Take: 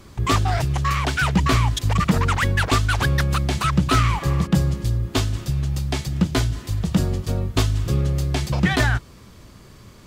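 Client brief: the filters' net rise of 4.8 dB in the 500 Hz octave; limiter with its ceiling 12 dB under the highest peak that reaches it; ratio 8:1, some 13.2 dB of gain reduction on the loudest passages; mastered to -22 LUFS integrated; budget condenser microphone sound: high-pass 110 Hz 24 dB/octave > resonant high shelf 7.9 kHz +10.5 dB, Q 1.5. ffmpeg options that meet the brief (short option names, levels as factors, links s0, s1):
-af "equalizer=f=500:t=o:g=6.5,acompressor=threshold=0.0501:ratio=8,alimiter=limit=0.0668:level=0:latency=1,highpass=f=110:w=0.5412,highpass=f=110:w=1.3066,highshelf=f=7900:t=q:w=1.5:g=10.5,volume=4.47"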